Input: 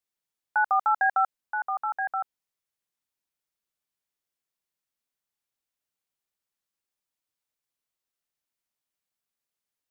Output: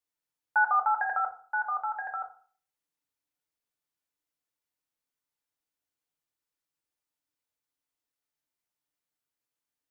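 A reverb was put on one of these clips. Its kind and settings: FDN reverb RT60 0.45 s, low-frequency decay 1.05×, high-frequency decay 0.35×, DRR 2 dB; trim -3.5 dB

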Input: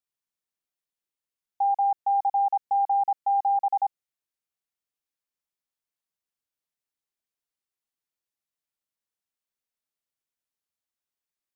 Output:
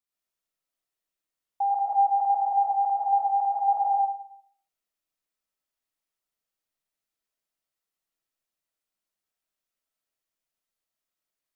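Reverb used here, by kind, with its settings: algorithmic reverb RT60 0.65 s, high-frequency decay 0.4×, pre-delay 80 ms, DRR -4 dB; trim -2 dB

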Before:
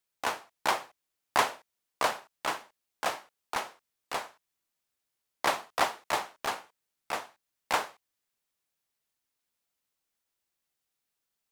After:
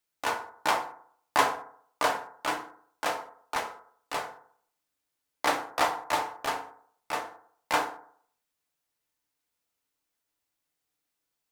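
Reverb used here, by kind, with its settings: FDN reverb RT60 0.58 s, low-frequency decay 0.9×, high-frequency decay 0.3×, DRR 3 dB

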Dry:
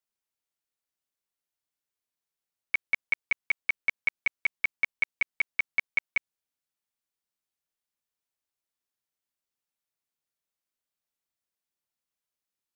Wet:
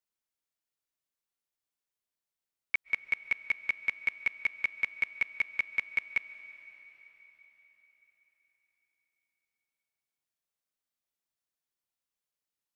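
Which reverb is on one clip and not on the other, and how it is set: algorithmic reverb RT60 4.5 s, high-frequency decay 1×, pre-delay 100 ms, DRR 14.5 dB; trim -2.5 dB

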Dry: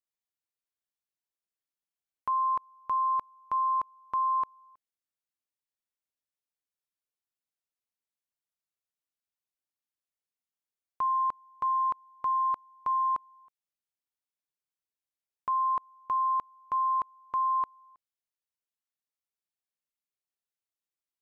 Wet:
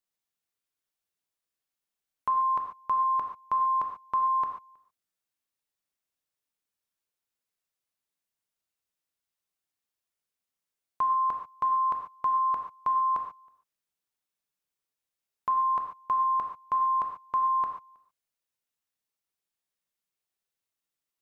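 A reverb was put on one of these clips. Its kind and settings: gated-style reverb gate 160 ms flat, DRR 3.5 dB; trim +3 dB

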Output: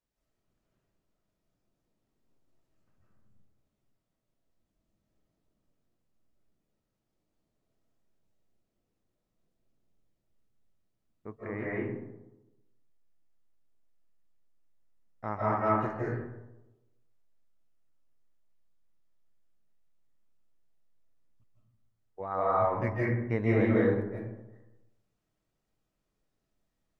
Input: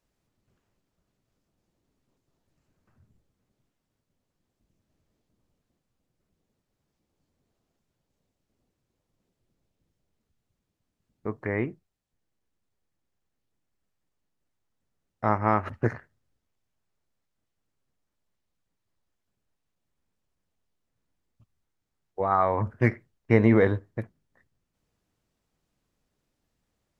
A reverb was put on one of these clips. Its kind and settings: algorithmic reverb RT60 1 s, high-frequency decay 0.4×, pre-delay 120 ms, DRR -6.5 dB; trim -11.5 dB

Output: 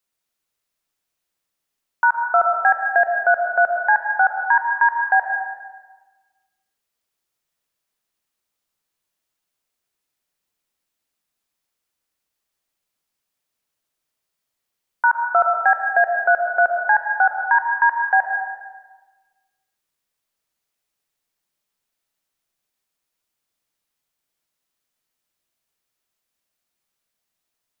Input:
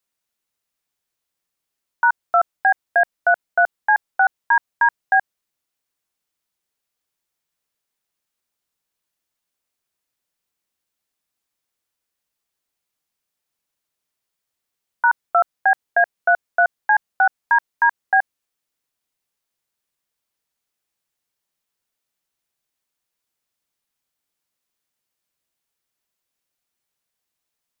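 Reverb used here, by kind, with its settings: algorithmic reverb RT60 1.3 s, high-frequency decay 0.75×, pre-delay 70 ms, DRR 3.5 dB

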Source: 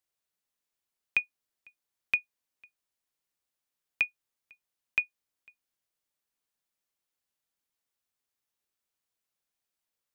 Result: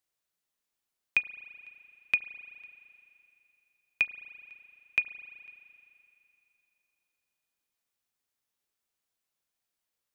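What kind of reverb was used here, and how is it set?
spring tank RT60 2.9 s, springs 34 ms, chirp 25 ms, DRR 13 dB; trim +1 dB

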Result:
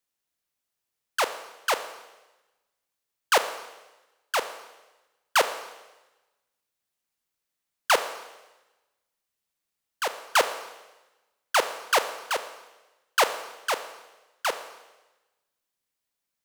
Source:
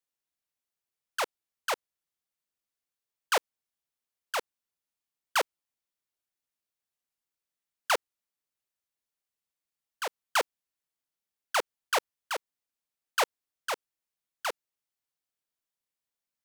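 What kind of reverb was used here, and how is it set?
Schroeder reverb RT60 1.1 s, combs from 27 ms, DRR 9.5 dB; trim +5.5 dB

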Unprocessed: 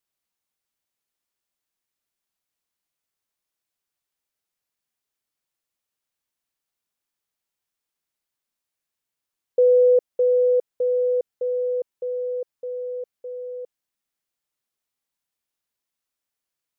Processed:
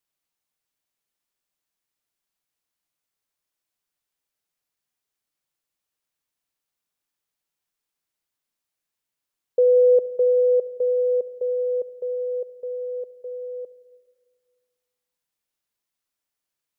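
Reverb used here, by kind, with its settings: simulated room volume 2100 m³, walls mixed, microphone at 0.42 m

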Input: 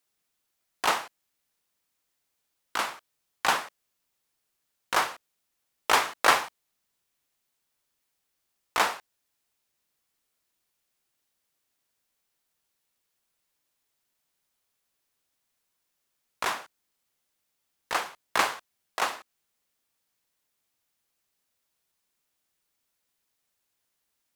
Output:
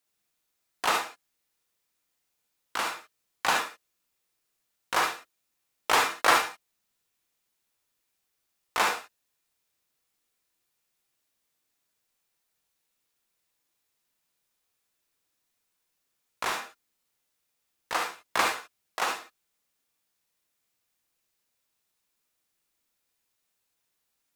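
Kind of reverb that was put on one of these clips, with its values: gated-style reverb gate 90 ms rising, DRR 2 dB; trim -2 dB

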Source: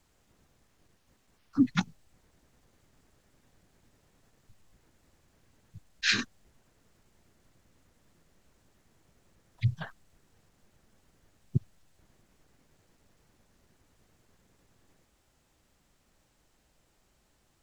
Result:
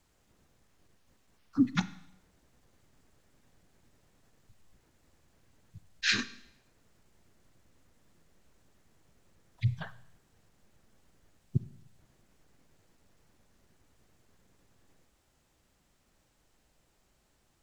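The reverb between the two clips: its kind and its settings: Schroeder reverb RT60 0.78 s, combs from 33 ms, DRR 15 dB; trim -1.5 dB

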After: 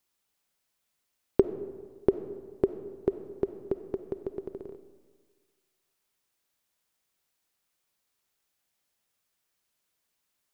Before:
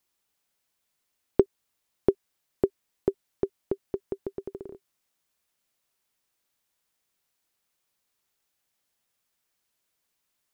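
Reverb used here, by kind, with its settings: algorithmic reverb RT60 1.6 s, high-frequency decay 0.6×, pre-delay 10 ms, DRR 10.5 dB; trim -1 dB

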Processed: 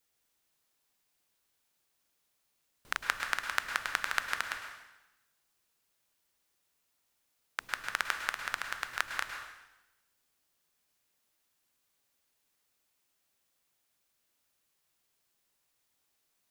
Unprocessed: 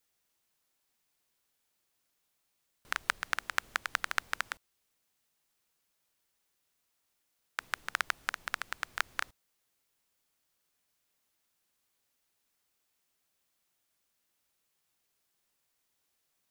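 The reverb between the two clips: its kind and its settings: plate-style reverb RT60 0.98 s, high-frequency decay 0.95×, pre-delay 95 ms, DRR 5 dB

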